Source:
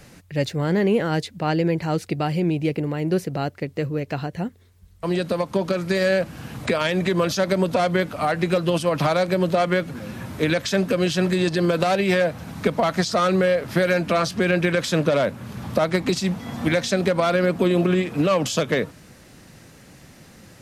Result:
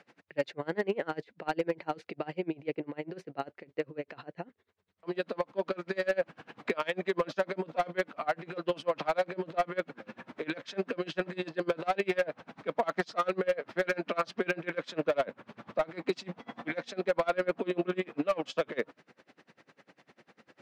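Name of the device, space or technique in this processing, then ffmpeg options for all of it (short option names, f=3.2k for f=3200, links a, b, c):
helicopter radio: -af "highpass=340,lowpass=2.8k,aeval=exprs='val(0)*pow(10,-28*(0.5-0.5*cos(2*PI*10*n/s))/20)':c=same,asoftclip=type=hard:threshold=-18dB,volume=-2dB"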